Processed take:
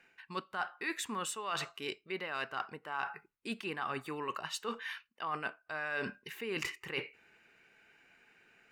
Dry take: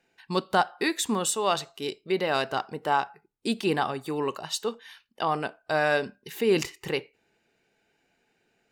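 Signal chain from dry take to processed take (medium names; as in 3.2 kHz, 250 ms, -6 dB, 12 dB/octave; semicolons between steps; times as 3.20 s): high-order bell 1.7 kHz +10 dB; reverse; compression 6:1, threshold -36 dBFS, peak gain reduction 22.5 dB; reverse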